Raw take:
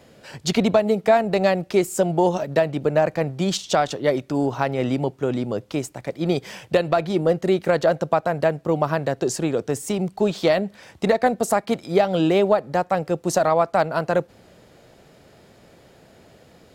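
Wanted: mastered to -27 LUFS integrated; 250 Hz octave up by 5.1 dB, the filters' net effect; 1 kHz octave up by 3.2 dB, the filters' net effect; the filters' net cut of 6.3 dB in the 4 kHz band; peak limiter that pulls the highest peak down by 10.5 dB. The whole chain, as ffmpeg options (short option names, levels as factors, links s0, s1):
-af "equalizer=f=250:t=o:g=7,equalizer=f=1000:t=o:g=4.5,equalizer=f=4000:t=o:g=-8.5,volume=0.631,alimiter=limit=0.158:level=0:latency=1"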